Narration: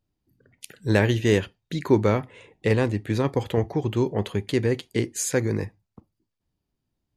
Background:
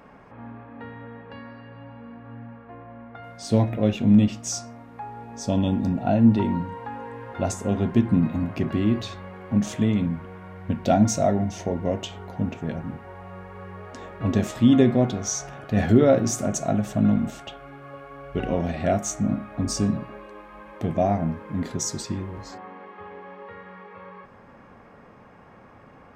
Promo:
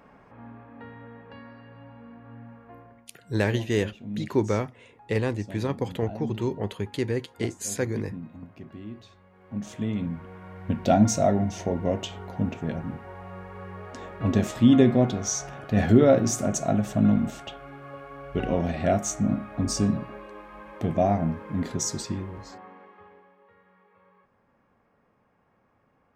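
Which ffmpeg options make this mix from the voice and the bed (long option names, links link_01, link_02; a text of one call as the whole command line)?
ffmpeg -i stem1.wav -i stem2.wav -filter_complex "[0:a]adelay=2450,volume=-4.5dB[link_01];[1:a]volume=13dB,afade=type=out:start_time=2.74:duration=0.32:silence=0.211349,afade=type=in:start_time=9.3:duration=1.49:silence=0.133352,afade=type=out:start_time=21.95:duration=1.38:silence=0.141254[link_02];[link_01][link_02]amix=inputs=2:normalize=0" out.wav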